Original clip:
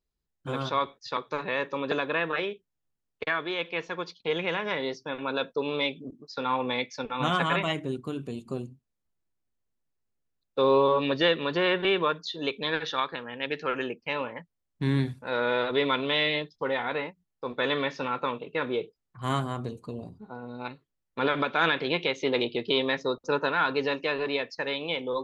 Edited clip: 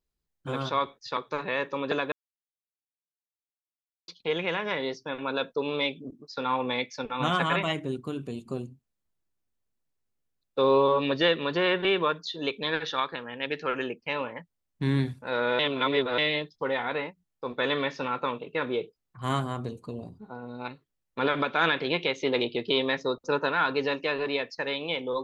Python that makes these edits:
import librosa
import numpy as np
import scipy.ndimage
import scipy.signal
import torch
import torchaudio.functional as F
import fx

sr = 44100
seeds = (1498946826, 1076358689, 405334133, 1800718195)

y = fx.edit(x, sr, fx.silence(start_s=2.12, length_s=1.96),
    fx.reverse_span(start_s=15.59, length_s=0.59), tone=tone)